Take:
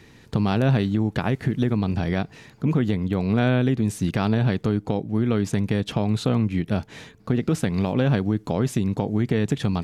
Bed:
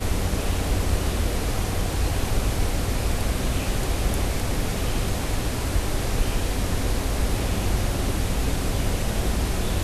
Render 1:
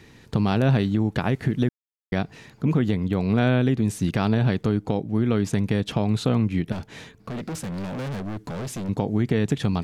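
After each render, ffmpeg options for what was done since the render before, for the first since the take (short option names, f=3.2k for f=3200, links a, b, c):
-filter_complex "[0:a]asettb=1/sr,asplit=3[a][b][c];[a]atrim=end=6.724[d];[b]atrim=start=6.72:end=8.89,asetpts=PTS-STARTPTS,afade=t=in:d=0.004:c=qsin,afade=t=out:st=2.166:d=0.004:c=qsin,volume=28.5dB,asoftclip=hard,volume=-28.5dB[e];[c]atrim=start=8.886[f];[d][e]acrossfade=d=0.004:c1=hsin:c2=qsin[g];[g][f]acrossfade=d=0.004:c1=qsin:c2=hsin,asplit=3[h][i][j];[h]atrim=end=1.69,asetpts=PTS-STARTPTS,afade=t=out:st=1.686:d=0.004:c=hsin[k];[i]atrim=start=1.69:end=2.12,asetpts=PTS-STARTPTS,volume=0[l];[j]atrim=start=2.12,asetpts=PTS-STARTPTS,afade=t=in:d=0.004:c=hsin[m];[k][l][m]concat=n=3:v=0:a=1"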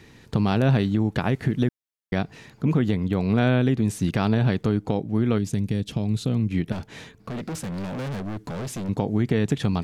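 -filter_complex "[0:a]asettb=1/sr,asplit=3[a][b][c];[a]atrim=end=5.384[d];[b]atrim=start=5.38:end=6.51,asetpts=PTS-STARTPTS,afade=t=in:d=0.004:c=qsin,afade=t=out:st=1.126:d=0.004:c=qsin,equalizer=f=1.1k:t=o:w=2.6:g=-12.5[e];[c]atrim=start=6.506[f];[d][e]acrossfade=d=0.004:c1=hsin:c2=qsin[g];[g][f]acrossfade=d=0.004:c1=qsin:c2=hsin"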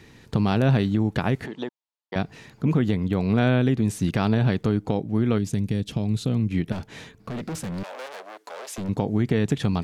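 -filter_complex "[0:a]asettb=1/sr,asplit=3[a][b][c];[a]atrim=end=1.464[d];[b]atrim=start=1.46:end=2.16,asetpts=PTS-STARTPTS,afade=t=in:d=0.004:c=qsin,afade=t=out:st=0.696:d=0.004:c=qsin,highpass=460,equalizer=f=920:t=q:w=4:g=9,equalizer=f=1.5k:t=q:w=4:g=-6,equalizer=f=2.2k:t=q:w=4:g=-7,equalizer=f=5.7k:t=q:w=4:g=-7,lowpass=f=6.6k:w=0.5412,lowpass=f=6.6k:w=1.3066[e];[c]atrim=start=2.156[f];[d][e]acrossfade=d=0.004:c1=hsin:c2=qsin[g];[g][f]acrossfade=d=0.004:c1=qsin:c2=hsin,asettb=1/sr,asplit=3[h][i][j];[h]atrim=end=7.834[k];[i]atrim=start=7.83:end=8.78,asetpts=PTS-STARTPTS,afade=t=in:d=0.004:c=qsin,afade=t=out:st=0.946:d=0.004:c=qsin,highpass=f=500:w=0.5412,highpass=f=500:w=1.3066[l];[j]atrim=start=8.776[m];[k][l]acrossfade=d=0.004:c1=hsin:c2=qsin[n];[n][m]acrossfade=d=0.004:c1=qsin:c2=hsin"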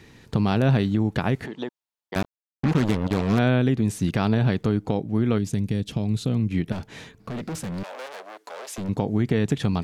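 -filter_complex "[0:a]asettb=1/sr,asplit=3[a][b][c];[a]atrim=end=2.144[d];[b]atrim=start=2.14:end=3.39,asetpts=PTS-STARTPTS,afade=t=in:d=0.004:c=qsin,afade=t=out:st=1.246:d=0.004:c=qsin,acrusher=bits=3:mix=0:aa=0.5[e];[c]atrim=start=3.386[f];[d][e]acrossfade=d=0.004:c1=hsin:c2=qsin[g];[g][f]acrossfade=d=0.004:c1=qsin:c2=hsin"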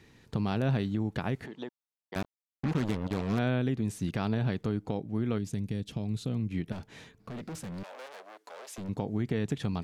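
-af "volume=-8.5dB"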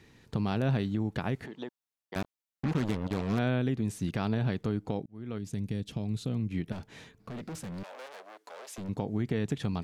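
-filter_complex "[0:a]asplit=2[a][b];[a]atrim=end=5.06,asetpts=PTS-STARTPTS,afade=t=out:st=5.056:d=0.004:c=hsin[c];[b]atrim=start=5.06,asetpts=PTS-STARTPTS,afade=t=in:d=0.57[d];[c][d]concat=n=2:v=0:a=1"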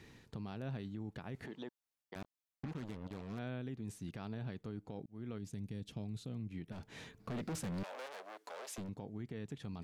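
-af "areverse,acompressor=threshold=-36dB:ratio=6,areverse,alimiter=level_in=10.5dB:limit=-24dB:level=0:latency=1:release=372,volume=-10.5dB"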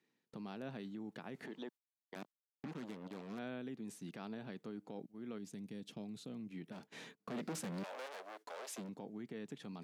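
-af "highpass=f=180:w=0.5412,highpass=f=180:w=1.3066,agate=range=-22dB:threshold=-56dB:ratio=16:detection=peak"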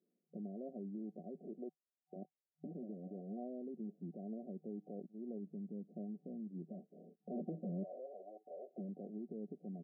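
-af "afftfilt=real='re*between(b*sr/4096,160,750)':imag='im*between(b*sr/4096,160,750)':win_size=4096:overlap=0.75,aecho=1:1:5.3:0.37"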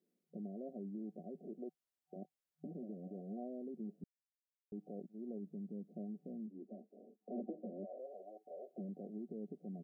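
-filter_complex "[0:a]asplit=3[a][b][c];[a]afade=t=out:st=6.46:d=0.02[d];[b]asuperpass=centerf=470:order=20:qfactor=0.54,afade=t=in:st=6.46:d=0.02,afade=t=out:st=7.98:d=0.02[e];[c]afade=t=in:st=7.98:d=0.02[f];[d][e][f]amix=inputs=3:normalize=0,asplit=3[g][h][i];[g]atrim=end=4.04,asetpts=PTS-STARTPTS,afade=t=out:st=4.036:d=0.004:c=hsin[j];[h]atrim=start=4.04:end=4.72,asetpts=PTS-STARTPTS,volume=0[k];[i]atrim=start=4.72,asetpts=PTS-STARTPTS,afade=t=in:d=0.004:c=hsin[l];[j][k][l]concat=n=3:v=0:a=1"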